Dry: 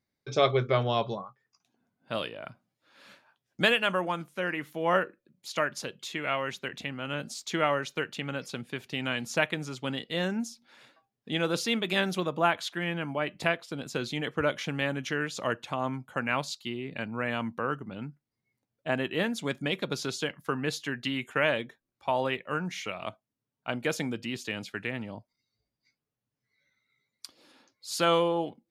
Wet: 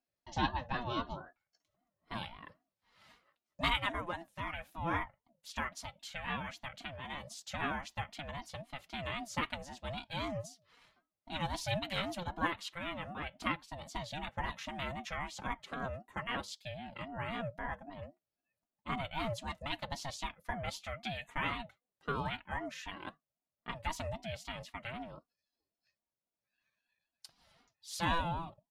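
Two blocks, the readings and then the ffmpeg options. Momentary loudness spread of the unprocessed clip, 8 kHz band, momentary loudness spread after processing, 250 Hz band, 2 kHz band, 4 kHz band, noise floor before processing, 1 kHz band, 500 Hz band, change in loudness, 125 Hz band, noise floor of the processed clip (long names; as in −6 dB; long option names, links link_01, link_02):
12 LU, −8.5 dB, 11 LU, −10.5 dB, −9.0 dB, −8.0 dB, below −85 dBFS, −5.5 dB, −14.0 dB, −9.0 dB, −7.0 dB, below −85 dBFS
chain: -af "flanger=delay=0.6:depth=1.5:regen=-77:speed=1.2:shape=triangular,aecho=1:1:4.2:0.72,aeval=exprs='val(0)*sin(2*PI*420*n/s+420*0.2/3.8*sin(2*PI*3.8*n/s))':channel_layout=same,volume=-3dB"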